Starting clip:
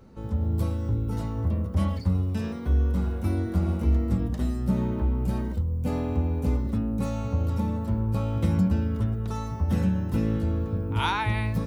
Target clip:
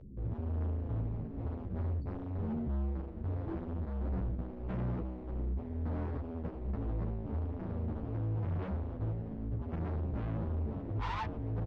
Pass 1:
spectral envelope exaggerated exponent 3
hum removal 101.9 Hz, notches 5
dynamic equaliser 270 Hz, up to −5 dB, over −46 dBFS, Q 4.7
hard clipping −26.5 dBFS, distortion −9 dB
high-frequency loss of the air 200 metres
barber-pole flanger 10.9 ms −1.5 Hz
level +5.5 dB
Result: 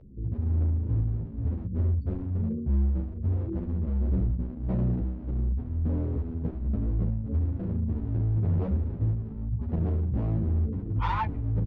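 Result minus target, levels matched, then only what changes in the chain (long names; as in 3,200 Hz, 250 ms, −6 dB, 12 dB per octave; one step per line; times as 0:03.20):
hard clipping: distortion −5 dB
change: hard clipping −37 dBFS, distortion −4 dB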